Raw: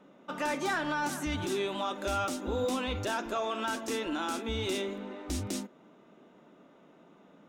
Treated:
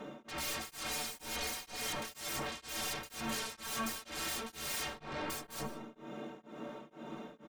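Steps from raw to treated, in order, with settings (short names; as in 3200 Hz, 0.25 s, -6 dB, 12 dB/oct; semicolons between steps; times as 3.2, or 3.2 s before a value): 0.88–1.96 minimum comb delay 4.1 ms; 3.18–4.57 bell 330 Hz -10.5 dB 0.9 oct; in parallel at -3 dB: compressor, threshold -44 dBFS, peak gain reduction 15 dB; on the sum: sine folder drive 19 dB, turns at -21.5 dBFS; metallic resonator 67 Hz, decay 0.23 s, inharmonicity 0.03; outdoor echo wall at 26 m, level -21 dB; on a send at -17 dB: reverb RT60 0.70 s, pre-delay 75 ms; on the sum: beating tremolo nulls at 2.1 Hz; gain -6.5 dB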